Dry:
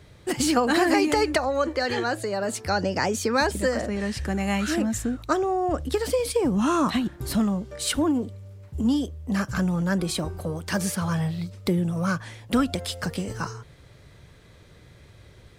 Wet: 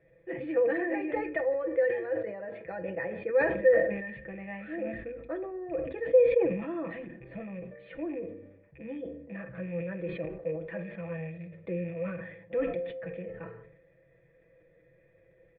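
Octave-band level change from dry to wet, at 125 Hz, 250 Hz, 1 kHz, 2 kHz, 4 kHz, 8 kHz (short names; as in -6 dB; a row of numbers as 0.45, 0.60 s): -13.0 dB, -12.5 dB, -15.5 dB, -7.0 dB, under -25 dB, under -40 dB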